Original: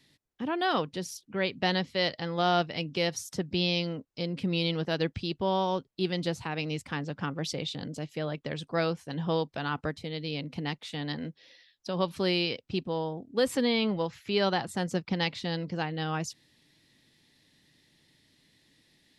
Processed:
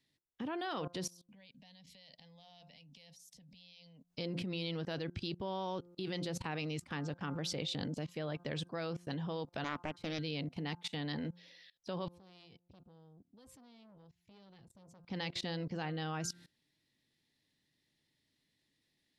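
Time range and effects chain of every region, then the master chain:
0:01.10–0:04.10: parametric band 460 Hz −12 dB 2.6 octaves + downward compressor, threshold −47 dBFS + phaser with its sweep stopped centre 360 Hz, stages 6
0:09.64–0:10.19: high-pass filter 75 Hz + low-shelf EQ 210 Hz −5.5 dB + highs frequency-modulated by the lows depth 0.75 ms
0:12.08–0:15.04: guitar amp tone stack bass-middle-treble 10-0-1 + saturating transformer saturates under 950 Hz
whole clip: hum removal 174.9 Hz, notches 9; output level in coarse steps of 21 dB; level +3.5 dB

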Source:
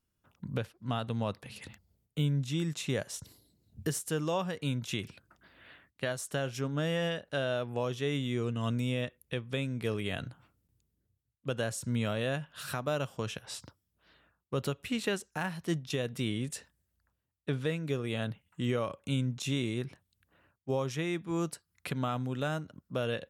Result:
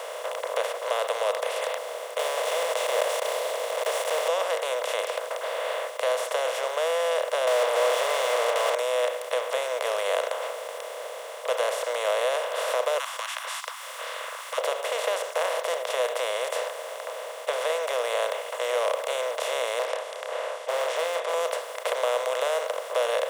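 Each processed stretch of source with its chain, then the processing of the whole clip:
0:02.19–0:04.30: one scale factor per block 3 bits + parametric band 1,400 Hz −12.5 dB 0.69 octaves + envelope flattener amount 50%
0:07.47–0:08.75: high-shelf EQ 7,100 Hz −7 dB + mid-hump overdrive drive 37 dB, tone 5,600 Hz, clips at −20 dBFS
0:12.98–0:14.58: Butterworth high-pass 1,100 Hz 96 dB per octave + parametric band 8,900 Hz +7 dB 1.3 octaves + upward compression, threshold −53 dBFS
0:19.79–0:21.34: Bessel low-pass filter 4,900 Hz, order 6 + hard clipping −32.5 dBFS + double-tracking delay 29 ms −12 dB
whole clip: compressor on every frequency bin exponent 0.2; Chebyshev high-pass filter 500 Hz, order 6; tilt shelving filter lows +8.5 dB, about 720 Hz

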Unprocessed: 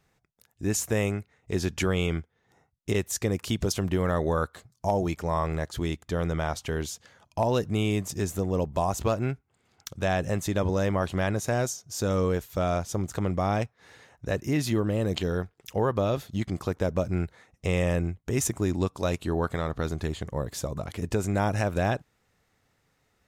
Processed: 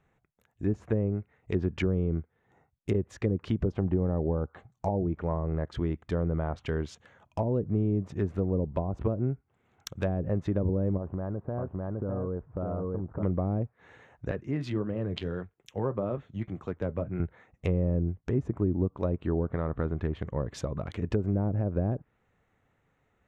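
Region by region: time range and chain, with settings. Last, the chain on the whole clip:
0:03.73–0:04.96: linear-phase brick-wall low-pass 10,000 Hz + parametric band 800 Hz +9.5 dB 0.26 octaves
0:10.97–0:13.23: low-pass filter 1,100 Hz 24 dB per octave + single-tap delay 607 ms −4 dB + downward compressor, threshold −27 dBFS
0:14.31–0:17.20: flanger 1.7 Hz, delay 4.1 ms, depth 4.5 ms, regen −63% + multiband upward and downward expander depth 40%
whole clip: adaptive Wiener filter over 9 samples; treble cut that deepens with the level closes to 460 Hz, closed at −21.5 dBFS; dynamic equaliser 770 Hz, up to −4 dB, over −47 dBFS, Q 1.9

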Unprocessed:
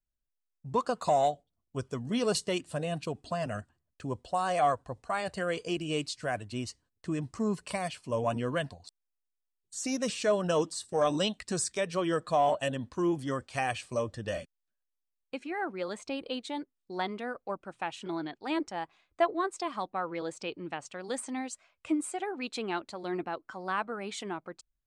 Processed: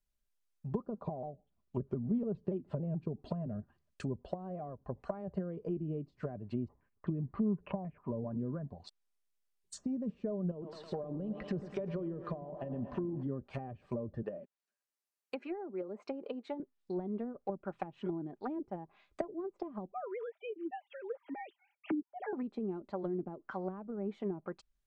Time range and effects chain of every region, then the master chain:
0:00.80–0:03.00: high-frequency loss of the air 80 metres + pitch modulation by a square or saw wave saw down 7 Hz, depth 160 cents
0:06.68–0:08.67: high-frequency loss of the air 470 metres + low-pass on a step sequencer 7.7 Hz 920–4,300 Hz
0:10.51–0:13.23: low-pass filter 4,700 Hz + downward compressor 10 to 1, threshold −33 dBFS + feedback echo at a low word length 108 ms, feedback 80%, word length 9 bits, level −12 dB
0:14.22–0:16.60: high-pass filter 310 Hz + parametric band 3,400 Hz −7 dB 0.25 octaves
0:19.92–0:22.33: three sine waves on the formant tracks + dynamic equaliser 200 Hz, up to +6 dB, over −42 dBFS, Q 0.9 + notch filter 1,100 Hz, Q 5.5
whole clip: downward compressor 3 to 1, threshold −32 dBFS; treble cut that deepens with the level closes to 330 Hz, closed at −33.5 dBFS; comb filter 5 ms, depth 35%; level +2 dB

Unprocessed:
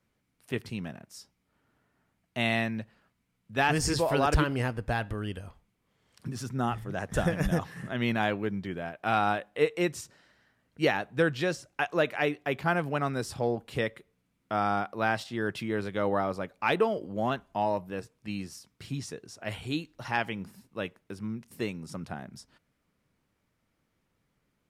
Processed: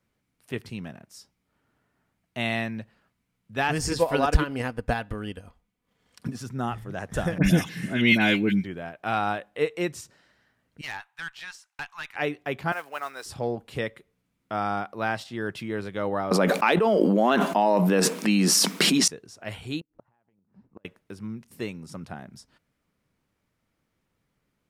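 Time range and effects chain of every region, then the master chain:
0:03.91–0:06.41: comb filter 4.1 ms, depth 35% + transient designer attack +7 dB, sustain −5 dB
0:07.38–0:08.64: high shelf with overshoot 1,800 Hz +9.5 dB, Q 1.5 + hollow resonant body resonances 200/290/1,500/2,100 Hz, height 11 dB, ringing for 40 ms + all-pass dispersion highs, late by 60 ms, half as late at 1,800 Hz
0:10.81–0:12.16: elliptic high-pass filter 860 Hz + tube saturation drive 21 dB, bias 0.7 + gain into a clipping stage and back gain 25.5 dB
0:12.72–0:13.26: high-pass filter 800 Hz + noise that follows the level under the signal 22 dB
0:16.31–0:19.08: elliptic high-pass filter 180 Hz + envelope flattener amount 100%
0:19.80–0:20.85: low-pass filter 1,100 Hz + downward compressor 20 to 1, threshold −35 dBFS + gate with flip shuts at −33 dBFS, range −30 dB
whole clip: no processing

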